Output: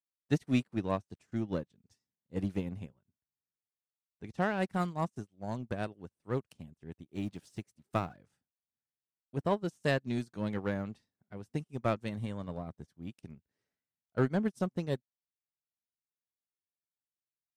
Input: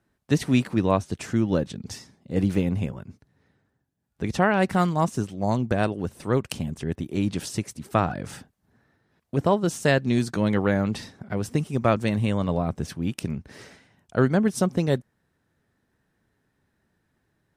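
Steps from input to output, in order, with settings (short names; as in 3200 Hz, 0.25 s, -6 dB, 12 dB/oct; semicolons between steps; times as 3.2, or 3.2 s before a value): 7.15–8.17 G.711 law mismatch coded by mu; 12.11–13.07 notch 2600 Hz, Q 6.6; in parallel at -3.5 dB: hard clip -19.5 dBFS, distortion -9 dB; on the sum: upward expander 2.5:1, over -38 dBFS; gain -9 dB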